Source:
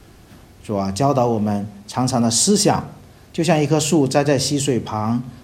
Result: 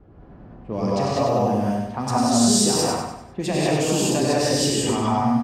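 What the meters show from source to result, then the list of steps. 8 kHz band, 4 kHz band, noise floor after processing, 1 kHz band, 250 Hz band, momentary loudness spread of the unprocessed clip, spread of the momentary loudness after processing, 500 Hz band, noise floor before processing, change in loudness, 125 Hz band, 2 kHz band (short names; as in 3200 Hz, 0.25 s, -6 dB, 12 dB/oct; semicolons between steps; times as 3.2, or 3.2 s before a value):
-2.0 dB, -1.0 dB, -45 dBFS, -1.0 dB, -2.0 dB, 10 LU, 10 LU, -2.5 dB, -47 dBFS, -2.5 dB, -4.5 dB, -2.0 dB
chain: low-pass opened by the level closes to 810 Hz, open at -15 dBFS; compressor, threshold -18 dBFS, peak gain reduction 8.5 dB; on a send: feedback echo 98 ms, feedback 40%, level -4.5 dB; on the sum: non-linear reverb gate 0.22 s rising, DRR -6 dB; gain -5 dB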